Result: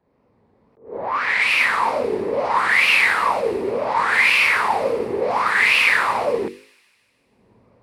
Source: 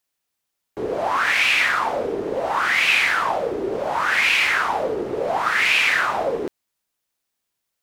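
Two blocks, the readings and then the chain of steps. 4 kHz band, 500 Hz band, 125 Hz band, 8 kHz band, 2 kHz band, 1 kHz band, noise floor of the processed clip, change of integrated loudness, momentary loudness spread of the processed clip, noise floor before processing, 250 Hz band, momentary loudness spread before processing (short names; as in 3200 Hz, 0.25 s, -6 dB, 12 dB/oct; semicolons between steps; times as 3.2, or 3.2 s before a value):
-0.5 dB, +2.0 dB, 0.0 dB, -2.0 dB, +2.0 dB, +2.5 dB, -63 dBFS, +2.0 dB, 10 LU, -79 dBFS, +0.5 dB, 10 LU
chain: opening faded in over 1.89 s; HPF 59 Hz; notches 50/100/150/200/250/300/350/400/450/500 Hz; dynamic EQ 5400 Hz, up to -5 dB, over -35 dBFS, Q 1; low-pass opened by the level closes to 460 Hz, open at -17 dBFS; ripple EQ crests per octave 0.92, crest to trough 7 dB; upward compressor, threshold -27 dBFS; wow and flutter 120 cents; thin delay 0.152 s, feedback 62%, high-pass 5000 Hz, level -10 dB; attack slew limiter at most 160 dB/s; gain +2 dB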